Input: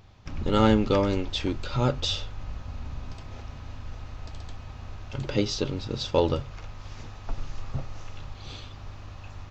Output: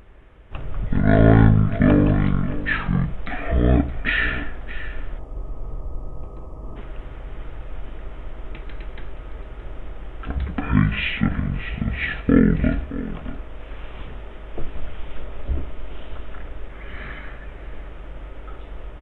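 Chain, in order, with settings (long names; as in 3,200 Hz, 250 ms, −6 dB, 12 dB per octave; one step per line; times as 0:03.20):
wrong playback speed 15 ips tape played at 7.5 ips
gain on a spectral selection 0:05.18–0:06.76, 1,300–4,500 Hz −19 dB
single-tap delay 621 ms −15 dB
level +6.5 dB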